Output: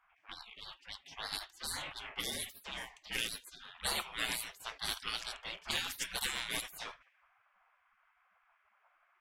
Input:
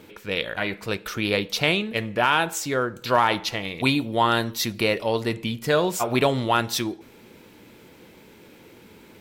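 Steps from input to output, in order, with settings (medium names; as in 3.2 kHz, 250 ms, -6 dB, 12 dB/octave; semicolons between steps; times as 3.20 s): graphic EQ with 31 bands 400 Hz -4 dB, 1.25 kHz +5 dB, 4 kHz -11 dB; level-controlled noise filter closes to 400 Hz, open at -18.5 dBFS; spectral gate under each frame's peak -30 dB weak; trim +7.5 dB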